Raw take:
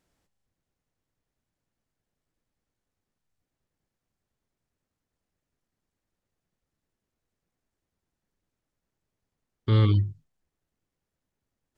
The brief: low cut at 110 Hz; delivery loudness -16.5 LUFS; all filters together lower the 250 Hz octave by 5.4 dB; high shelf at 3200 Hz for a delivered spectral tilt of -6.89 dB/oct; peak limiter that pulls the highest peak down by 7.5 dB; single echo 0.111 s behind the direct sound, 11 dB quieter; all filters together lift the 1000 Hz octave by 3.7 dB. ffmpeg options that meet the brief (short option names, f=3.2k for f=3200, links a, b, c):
-af "highpass=110,equalizer=f=250:t=o:g=-7.5,equalizer=f=1k:t=o:g=5.5,highshelf=f=3.2k:g=-5,alimiter=limit=-21.5dB:level=0:latency=1,aecho=1:1:111:0.282,volume=15dB"